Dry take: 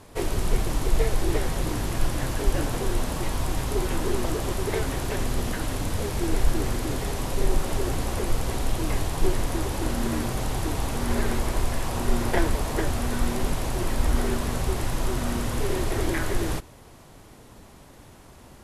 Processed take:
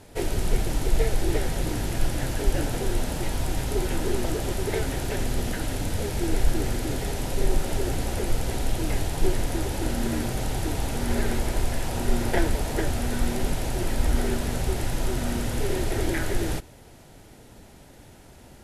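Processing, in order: peaking EQ 1.1 kHz -13.5 dB 0.2 oct

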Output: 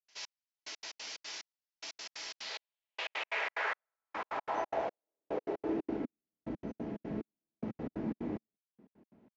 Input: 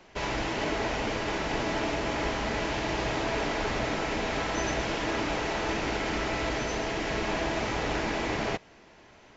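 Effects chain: 2.49–3.96 s: graphic EQ 125/250/500/1000 Hz -11/-10/+9/+4 dB; trance gate ".xx.....x.x.xx" 181 bpm -60 dB; band-pass sweep 5.3 kHz -> 220 Hz, 2.26–6.26 s; trim +2.5 dB

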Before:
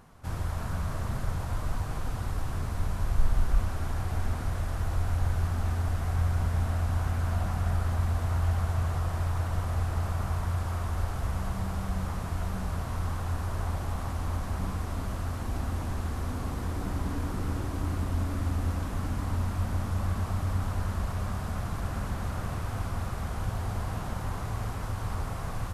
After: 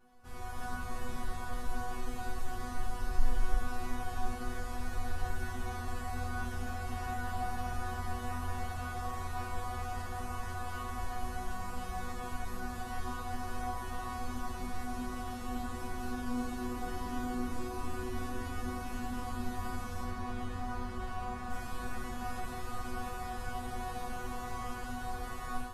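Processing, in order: 20.03–21.50 s: low-pass 3.8 kHz 6 dB/octave; chord resonator B3 fifth, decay 0.51 s; level rider gain up to 6 dB; trim +10.5 dB

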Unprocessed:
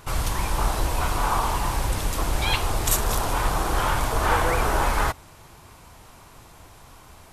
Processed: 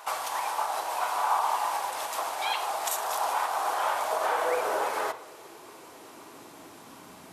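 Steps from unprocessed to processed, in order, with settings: compression, threshold -26 dBFS, peak gain reduction 10 dB; high-pass sweep 760 Hz -> 210 Hz, 3.62–7.26 s; on a send: reverberation RT60 0.70 s, pre-delay 3 ms, DRR 9.5 dB

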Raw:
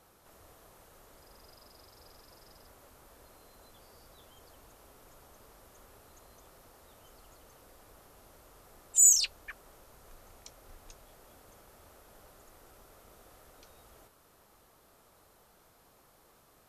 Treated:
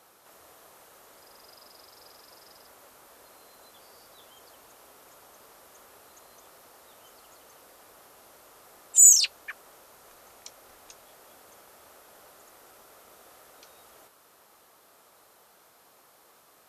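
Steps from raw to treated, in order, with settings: high-pass 500 Hz 6 dB/octave; trim +6 dB

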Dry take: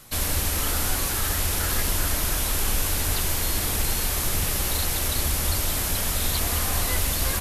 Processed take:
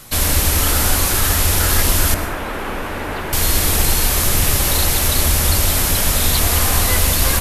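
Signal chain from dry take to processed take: 2.14–3.33 s: three-band isolator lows -14 dB, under 180 Hz, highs -24 dB, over 2.4 kHz; reverberation RT60 0.90 s, pre-delay 97 ms, DRR 9 dB; trim +8.5 dB

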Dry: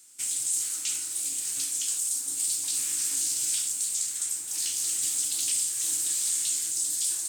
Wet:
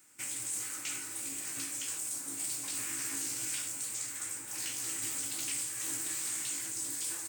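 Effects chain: high-order bell 6.3 kHz -14 dB 2.4 oct; doubling 18 ms -11 dB; trim +4.5 dB

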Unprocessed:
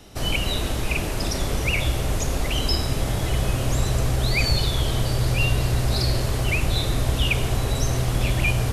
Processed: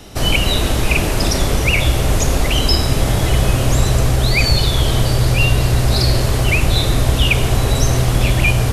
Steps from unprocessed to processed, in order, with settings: in parallel at +0.5 dB: gain riding; 4.15–4.66 s: on the sum: short-mantissa float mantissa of 8-bit; trim +1.5 dB

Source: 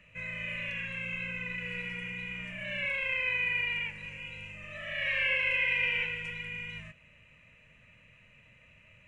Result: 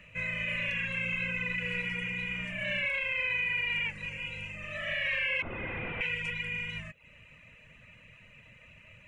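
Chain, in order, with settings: 5.42–6.01 s: one-bit delta coder 16 kbps, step -43.5 dBFS; reverb removal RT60 0.53 s; peak limiter -28 dBFS, peak gain reduction 8 dB; trim +5.5 dB

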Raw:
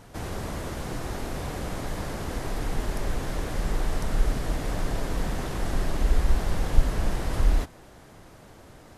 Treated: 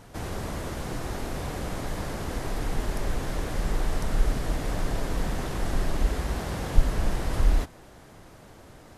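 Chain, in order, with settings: 6.08–6.76 s: high-pass 66 Hz

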